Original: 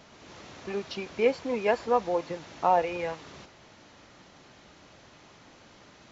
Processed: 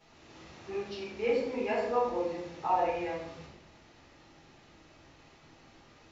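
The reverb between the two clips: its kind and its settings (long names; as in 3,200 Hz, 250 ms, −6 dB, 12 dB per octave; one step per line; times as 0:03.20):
rectangular room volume 180 cubic metres, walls mixed, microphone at 4.2 metres
level −17 dB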